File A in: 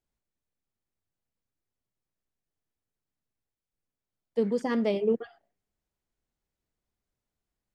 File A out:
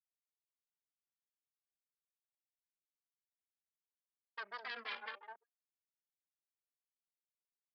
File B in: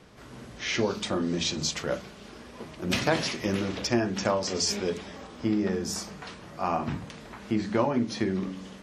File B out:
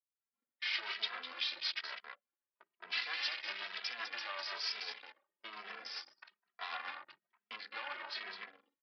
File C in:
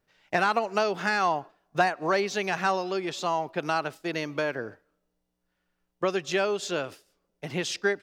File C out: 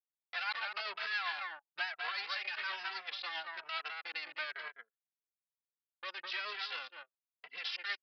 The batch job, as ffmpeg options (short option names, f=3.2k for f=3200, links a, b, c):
-filter_complex "[0:a]agate=range=-33dB:threshold=-40dB:ratio=3:detection=peak,asplit=2[a][b];[b]adelay=204.1,volume=-7dB,highshelf=f=4k:g=-4.59[c];[a][c]amix=inputs=2:normalize=0,alimiter=limit=-19dB:level=0:latency=1:release=35,aeval=exprs='0.112*(cos(1*acos(clip(val(0)/0.112,-1,1)))-cos(1*PI/2))+0.00398*(cos(3*acos(clip(val(0)/0.112,-1,1)))-cos(3*PI/2))+0.0316*(cos(4*acos(clip(val(0)/0.112,-1,1)))-cos(4*PI/2))+0.00251*(cos(8*acos(clip(val(0)/0.112,-1,1)))-cos(8*PI/2))':c=same,anlmdn=3.98,tremolo=f=7.7:d=0.39,asuperpass=centerf=3500:order=4:qfactor=0.58,aresample=11025,aresample=44100,asplit=2[d][e];[e]adelay=2.7,afreqshift=1.1[f];[d][f]amix=inputs=2:normalize=1,volume=1dB"